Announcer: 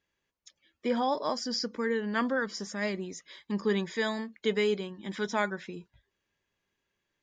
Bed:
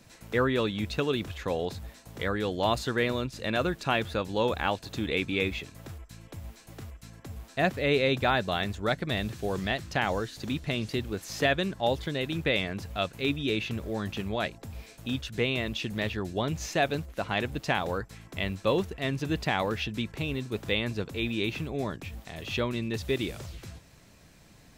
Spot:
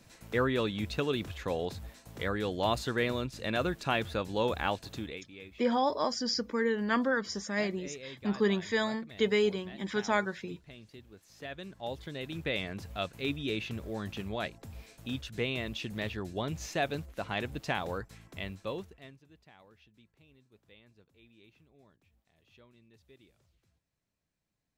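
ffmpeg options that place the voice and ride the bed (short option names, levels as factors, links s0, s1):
-filter_complex "[0:a]adelay=4750,volume=1.06[s0];[1:a]volume=4.22,afade=t=out:st=4.85:d=0.37:silence=0.133352,afade=t=in:st=11.36:d=1.41:silence=0.16788,afade=t=out:st=18.09:d=1.11:silence=0.0530884[s1];[s0][s1]amix=inputs=2:normalize=0"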